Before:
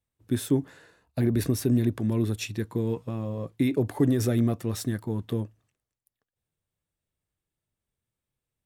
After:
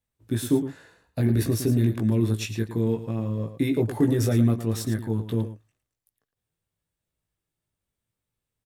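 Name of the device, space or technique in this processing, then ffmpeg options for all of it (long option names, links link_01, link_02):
slapback doubling: -filter_complex "[0:a]asplit=3[link_01][link_02][link_03];[link_02]adelay=18,volume=-4dB[link_04];[link_03]adelay=111,volume=-10dB[link_05];[link_01][link_04][link_05]amix=inputs=3:normalize=0"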